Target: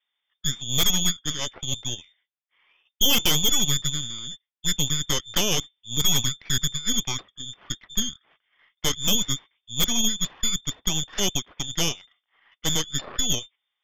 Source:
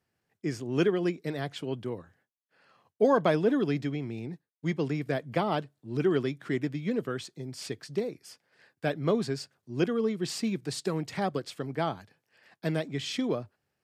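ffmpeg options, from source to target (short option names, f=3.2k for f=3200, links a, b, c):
-af "lowpass=f=3.1k:t=q:w=0.5098,lowpass=f=3.1k:t=q:w=0.6013,lowpass=f=3.1k:t=q:w=0.9,lowpass=f=3.1k:t=q:w=2.563,afreqshift=-3700,aeval=exprs='0.266*(cos(1*acos(clip(val(0)/0.266,-1,1)))-cos(1*PI/2))+0.0944*(cos(8*acos(clip(val(0)/0.266,-1,1)))-cos(8*PI/2))':c=same"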